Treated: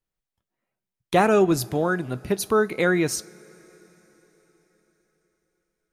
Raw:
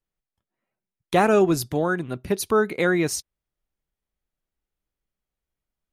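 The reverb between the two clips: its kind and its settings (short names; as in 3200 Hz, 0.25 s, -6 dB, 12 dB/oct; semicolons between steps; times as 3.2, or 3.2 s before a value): two-slope reverb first 0.28 s, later 4.7 s, from -19 dB, DRR 16 dB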